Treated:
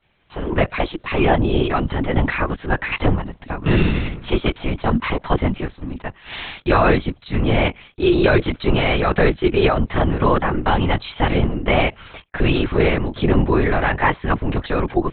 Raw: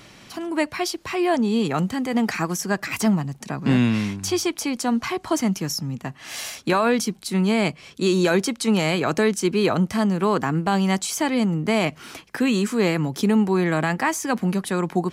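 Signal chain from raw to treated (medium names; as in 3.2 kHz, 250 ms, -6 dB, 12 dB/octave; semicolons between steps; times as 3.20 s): expander -34 dBFS; high-pass 220 Hz; LPC vocoder at 8 kHz whisper; trim +5.5 dB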